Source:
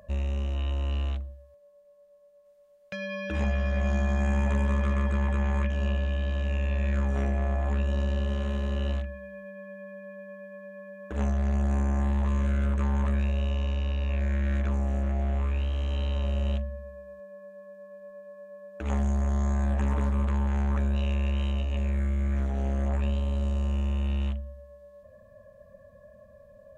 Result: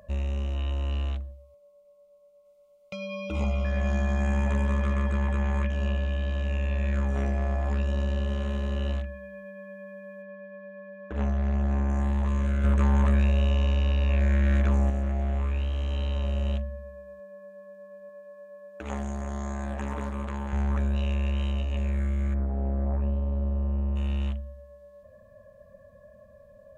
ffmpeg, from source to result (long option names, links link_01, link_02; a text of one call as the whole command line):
ffmpeg -i in.wav -filter_complex "[0:a]asettb=1/sr,asplit=3[link_01][link_02][link_03];[link_01]atrim=end=1.314[link_04];[link_02]atrim=start=1.31:end=3.65,asetpts=PTS-STARTPTS,afade=type=in:duration=0.004:curve=qsin,afade=type=out:start_time=2.336:duration=0.004:curve=qsin,asuperstop=centerf=1700:order=20:qfactor=3.3[link_05];[link_03]atrim=start=3.646[link_06];[link_04][link_05]acrossfade=duration=0.004:curve1=hsin:curve2=qsin[link_07];[link_07][link_06]acrossfade=duration=0.004:curve1=qsin:curve2=hsin,asettb=1/sr,asplit=3[link_08][link_09][link_10];[link_08]atrim=end=7.254[link_11];[link_09]atrim=start=7.25:end=7.91,asetpts=PTS-STARTPTS,afade=type=in:duration=0.004:curve=qsin,afade=type=out:start_time=0.656:duration=0.004:curve=qsin,equalizer=frequency=5000:width=5.1:gain=11[link_12];[link_10]atrim=start=7.906[link_13];[link_11][link_12]acrossfade=duration=0.004:curve1=hsin:curve2=qsin[link_14];[link_14][link_13]acrossfade=duration=0.004:curve1=qsin:curve2=hsin,asettb=1/sr,asplit=3[link_15][link_16][link_17];[link_15]atrim=end=10.224[link_18];[link_16]atrim=start=10.22:end=11.9,asetpts=PTS-STARTPTS,afade=type=in:duration=0.004:curve=qsin,afade=type=out:start_time=1.676:duration=0.004:curve=qsin,lowpass=4100[link_19];[link_17]atrim=start=11.896[link_20];[link_18][link_19]acrossfade=duration=0.004:curve1=hsin:curve2=qsin[link_21];[link_21][link_20]acrossfade=duration=0.004:curve1=qsin:curve2=hsin,asettb=1/sr,asplit=3[link_22][link_23][link_24];[link_22]atrim=end=18.094[link_25];[link_23]atrim=start=18.09:end=20.53,asetpts=PTS-STARTPTS,afade=type=in:duration=0.004:curve=qsin,afade=type=out:start_time=2.436:duration=0.004:curve=qsin,lowshelf=frequency=150:gain=-10.5[link_26];[link_24]atrim=start=20.526[link_27];[link_25][link_26]acrossfade=duration=0.004:curve1=hsin:curve2=qsin[link_28];[link_28][link_27]acrossfade=duration=0.004:curve1=qsin:curve2=hsin,asplit=3[link_29][link_30][link_31];[link_29]afade=type=out:start_time=22.33:duration=0.02[link_32];[link_30]lowpass=1000,afade=type=in:start_time=22.33:duration=0.02,afade=type=out:start_time=23.95:duration=0.02[link_33];[link_31]afade=type=in:start_time=23.95:duration=0.02[link_34];[link_32][link_33][link_34]amix=inputs=3:normalize=0,asplit=3[link_35][link_36][link_37];[link_35]atrim=end=12.642[link_38];[link_36]atrim=start=12.638:end=14.902,asetpts=PTS-STARTPTS,volume=4.5dB[link_39];[link_37]atrim=start=14.898[link_40];[link_38][link_39]acrossfade=duration=0.004:curve1=hsin:curve2=hsin[link_41];[link_41][link_40]acrossfade=duration=0.004:curve1=hsin:curve2=hsin" out.wav